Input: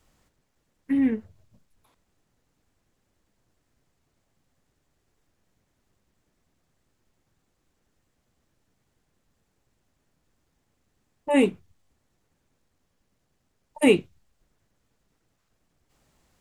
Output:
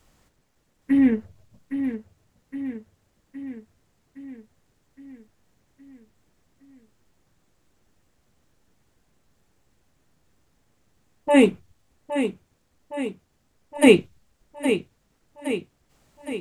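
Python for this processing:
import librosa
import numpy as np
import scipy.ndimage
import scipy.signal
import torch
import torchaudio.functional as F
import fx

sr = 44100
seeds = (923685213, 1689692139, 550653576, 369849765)

y = fx.echo_feedback(x, sr, ms=815, feedback_pct=59, wet_db=-9)
y = y * librosa.db_to_amplitude(4.5)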